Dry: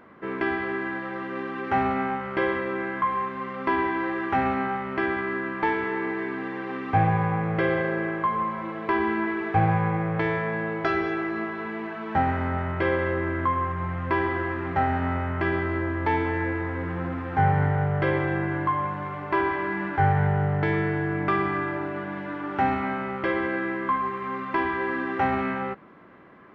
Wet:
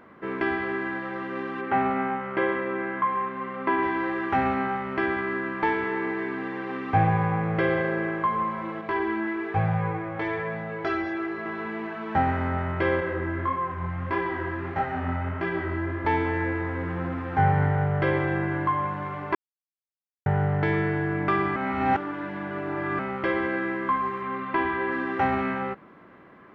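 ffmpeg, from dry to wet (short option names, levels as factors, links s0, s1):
-filter_complex "[0:a]asettb=1/sr,asplit=3[s0][s1][s2];[s0]atrim=end=1.614[s3];[s1]atrim=start=1.61:end=3.83,asetpts=PTS-STARTPTS,afade=t=in:d=0.004:c=qsin,afade=t=out:st=2.216:d=0.004:c=qsin,highpass=130,lowpass=3000[s4];[s2]atrim=start=3.826[s5];[s3][s4]acrossfade=d=0.004:c1=hsin:c2=qsin[s6];[s6][s5]acrossfade=d=0.004:c1=qsin:c2=hsin,asettb=1/sr,asplit=3[s7][s8][s9];[s7]atrim=end=8.814[s10];[s8]atrim=start=8.81:end=11.46,asetpts=PTS-STARTPTS,afade=t=in:d=0.004:c=qsin,afade=t=out:st=2.646:d=0.004:c=qsin,flanger=delay=19.5:depth=2.1:speed=1.1[s11];[s9]atrim=start=11.456[s12];[s10][s11]acrossfade=d=0.004:c1=hsin:c2=qsin[s13];[s13][s12]acrossfade=d=0.004:c1=qsin:c2=hsin,asettb=1/sr,asplit=3[s14][s15][s16];[s14]atrim=end=13.004[s17];[s15]atrim=start=13:end=16.05,asetpts=PTS-STARTPTS,afade=t=in:d=0.004:c=qsin,afade=t=out:st=3.046:d=0.004:c=qsin,flanger=delay=17:depth=7.2:speed=1.6[s18];[s16]atrim=start=16.046[s19];[s17][s18]acrossfade=d=0.004:c1=hsin:c2=qsin[s20];[s20][s19]acrossfade=d=0.004:c1=qsin:c2=hsin,asettb=1/sr,asplit=3[s21][s22][s23];[s21]atrim=end=24.224[s24];[s22]atrim=start=24.22:end=24.92,asetpts=PTS-STARTPTS,afade=t=in:d=0.004:c=qsin,afade=t=out:st=0.696:d=0.004:c=qsin,lowpass=f=4200:w=0.5412,lowpass=f=4200:w=1.3066[s25];[s23]atrim=start=24.916[s26];[s24][s25]acrossfade=d=0.004:c1=hsin:c2=qsin[s27];[s27][s26]acrossfade=d=0.004:c1=qsin:c2=hsin,asplit=5[s28][s29][s30][s31][s32];[s28]atrim=end=19.35,asetpts=PTS-STARTPTS,afade=t=out:st=19.346:d=0.004:c=hsin[s33];[s29]atrim=start=19.35:end=20.26,asetpts=PTS-STARTPTS,volume=0[s34];[s30]atrim=start=20.26:end=21.562,asetpts=PTS-STARTPTS,afade=t=in:d=0.004:c=hsin[s35];[s31]atrim=start=21.558:end=22.992,asetpts=PTS-STARTPTS,areverse[s36];[s32]atrim=start=22.988[s37];[s33][s34][s35]concat=n=3:v=0:a=1[s38];[s38][s36]acrossfade=d=0.004:c1=hsin:c2=hsin[s39];[s39][s37]acrossfade=d=0.004:c1=hsin:c2=hsin"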